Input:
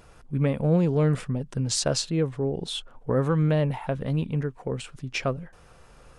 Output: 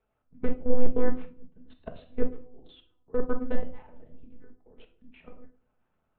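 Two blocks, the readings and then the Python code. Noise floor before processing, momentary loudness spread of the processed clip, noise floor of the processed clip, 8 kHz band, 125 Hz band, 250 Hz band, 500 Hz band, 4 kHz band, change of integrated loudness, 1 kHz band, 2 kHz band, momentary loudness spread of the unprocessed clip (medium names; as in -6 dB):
-53 dBFS, 20 LU, -77 dBFS, under -40 dB, -19.5 dB, -8.5 dB, -6.0 dB, -26.5 dB, -7.5 dB, -9.0 dB, -10.5 dB, 11 LU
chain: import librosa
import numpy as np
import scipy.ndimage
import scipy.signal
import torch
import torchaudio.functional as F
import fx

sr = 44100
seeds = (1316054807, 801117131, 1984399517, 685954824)

p1 = fx.dynamic_eq(x, sr, hz=260.0, q=0.75, threshold_db=-37.0, ratio=4.0, max_db=5)
p2 = fx.lowpass(p1, sr, hz=1600.0, slope=6)
p3 = fx.low_shelf(p2, sr, hz=150.0, db=-10.5)
p4 = fx.lpc_monotone(p3, sr, seeds[0], pitch_hz=250.0, order=8)
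p5 = p4 + fx.echo_wet_bandpass(p4, sr, ms=118, feedback_pct=32, hz=580.0, wet_db=-17.0, dry=0)
p6 = fx.level_steps(p5, sr, step_db=22)
p7 = fx.room_shoebox(p6, sr, seeds[1], volume_m3=590.0, walls='furnished', distance_m=1.5)
p8 = 10.0 ** (-26.0 / 20.0) * np.tanh(p7 / 10.0 ** (-26.0 / 20.0))
p9 = p7 + F.gain(torch.from_numpy(p8), -8.5).numpy()
y = fx.upward_expand(p9, sr, threshold_db=-41.0, expansion=1.5)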